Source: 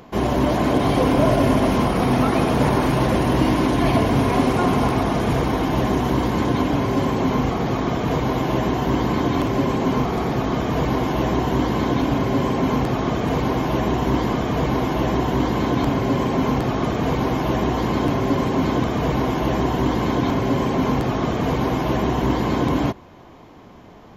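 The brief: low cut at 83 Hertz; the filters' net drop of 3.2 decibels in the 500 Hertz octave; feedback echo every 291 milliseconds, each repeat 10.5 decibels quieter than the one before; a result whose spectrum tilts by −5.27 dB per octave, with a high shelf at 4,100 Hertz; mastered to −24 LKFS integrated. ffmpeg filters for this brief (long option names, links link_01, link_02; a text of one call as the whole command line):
ffmpeg -i in.wav -af "highpass=83,equalizer=frequency=500:width_type=o:gain=-4.5,highshelf=frequency=4100:gain=7.5,aecho=1:1:291|582|873:0.299|0.0896|0.0269,volume=-2.5dB" out.wav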